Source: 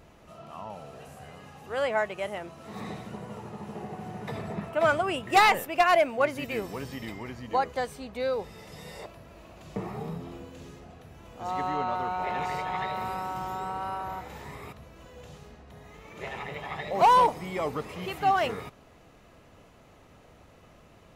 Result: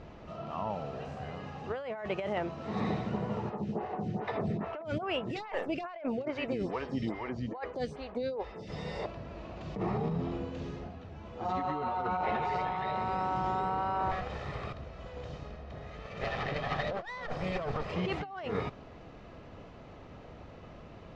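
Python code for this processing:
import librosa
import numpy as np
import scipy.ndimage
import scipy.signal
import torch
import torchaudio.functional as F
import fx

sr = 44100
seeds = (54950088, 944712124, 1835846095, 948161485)

y = fx.stagger_phaser(x, sr, hz=2.4, at=(3.49, 8.68), fade=0.02)
y = fx.ensemble(y, sr, at=(10.88, 12.59), fade=0.02)
y = fx.lower_of_two(y, sr, delay_ms=1.6, at=(14.11, 17.92))
y = scipy.signal.sosfilt(scipy.signal.butter(4, 5400.0, 'lowpass', fs=sr, output='sos'), y)
y = fx.tilt_shelf(y, sr, db=3.0, hz=1200.0)
y = fx.over_compress(y, sr, threshold_db=-34.0, ratio=-1.0)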